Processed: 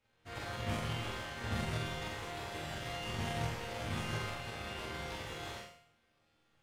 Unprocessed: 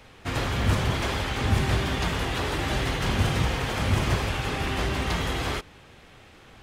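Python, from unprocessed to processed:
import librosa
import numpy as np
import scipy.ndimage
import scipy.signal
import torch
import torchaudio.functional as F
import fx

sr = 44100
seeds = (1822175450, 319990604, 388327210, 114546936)

y = fx.resonator_bank(x, sr, root=39, chord='sus4', decay_s=0.68)
y = fx.power_curve(y, sr, exponent=1.4)
y = fx.room_flutter(y, sr, wall_m=7.6, rt60_s=0.56)
y = F.gain(torch.from_numpy(y), 5.0).numpy()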